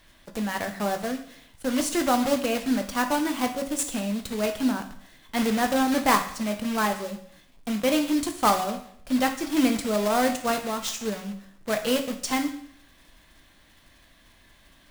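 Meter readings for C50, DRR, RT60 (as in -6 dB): 10.0 dB, 5.5 dB, 0.65 s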